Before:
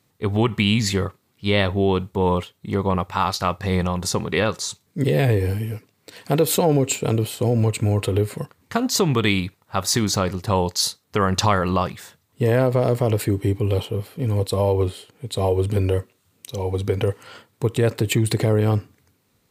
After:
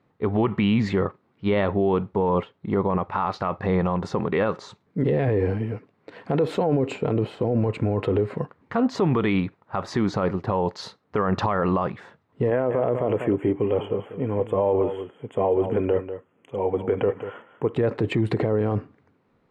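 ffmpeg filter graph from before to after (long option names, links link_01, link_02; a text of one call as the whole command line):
ffmpeg -i in.wav -filter_complex "[0:a]asettb=1/sr,asplit=3[link_01][link_02][link_03];[link_01]atrim=end=12.504[link_04];[link_02]atrim=start=12.5:end=17.74,asetpts=PTS-STARTPTS,afade=type=in:duration=0.004:curve=qsin,afade=type=out:start_time=5.236:duration=0.004:curve=qsin,asuperstop=centerf=4700:order=20:qfactor=1.6,lowshelf=frequency=130:gain=-11,aecho=1:1:193:0.237,atrim=end_sample=231084[link_05];[link_03]atrim=start=17.736[link_06];[link_04][link_05]acrossfade=duration=0.004:curve1=hsin:curve2=qsin[link_07];[link_07][link_06]acrossfade=duration=0.004:curve1=qsin:curve2=hsin,lowpass=1500,equalizer=frequency=84:width=1:gain=-9,alimiter=limit=-17dB:level=0:latency=1:release=26,volume=4dB" out.wav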